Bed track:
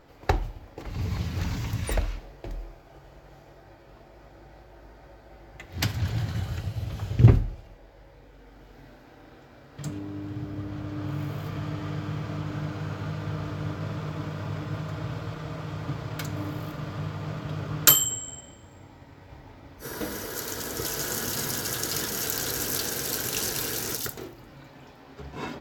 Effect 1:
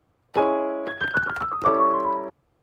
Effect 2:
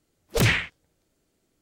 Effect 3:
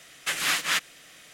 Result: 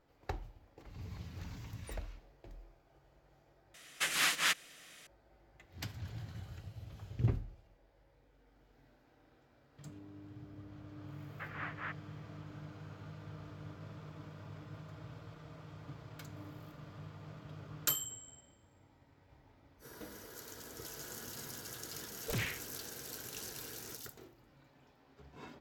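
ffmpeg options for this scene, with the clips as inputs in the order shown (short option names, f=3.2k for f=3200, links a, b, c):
-filter_complex "[3:a]asplit=2[a][b];[0:a]volume=-16.5dB[c];[b]lowpass=f=1.8k:w=0.5412,lowpass=f=1.8k:w=1.3066[d];[c]asplit=2[e][f];[e]atrim=end=3.744[g];[a]atrim=end=1.33,asetpts=PTS-STARTPTS,volume=-5.5dB[h];[f]atrim=start=5.066[i];[d]atrim=end=1.33,asetpts=PTS-STARTPTS,volume=-12dB,afade=t=in:d=0.004:c=hsin,afade=t=out:st=1.326:d=0.004:c=hsin,adelay=11130[j];[2:a]atrim=end=1.61,asetpts=PTS-STARTPTS,volume=-16.5dB,afade=t=in:d=0.004:c=hsin,afade=t=out:st=1.606:d=0.004:c=hsin,adelay=21930[k];[g][h]acrossfade=d=0.004:c1=hsin:c2=hsin[l];[l][i]acrossfade=d=0.004:c1=hsin:c2=hsin[m];[m][j][k]amix=inputs=3:normalize=0"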